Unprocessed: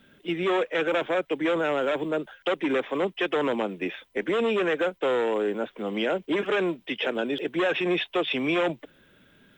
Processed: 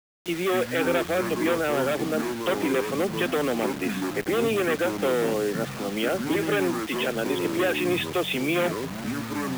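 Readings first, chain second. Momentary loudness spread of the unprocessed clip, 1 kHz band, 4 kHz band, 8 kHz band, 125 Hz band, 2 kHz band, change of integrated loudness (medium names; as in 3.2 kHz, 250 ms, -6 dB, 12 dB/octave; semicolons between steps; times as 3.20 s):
5 LU, +1.0 dB, +1.0 dB, no reading, +7.0 dB, +1.0 dB, +1.0 dB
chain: Butterworth band-stop 960 Hz, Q 6.5; ever faster or slower copies 139 ms, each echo -6 st, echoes 3, each echo -6 dB; word length cut 6-bit, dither none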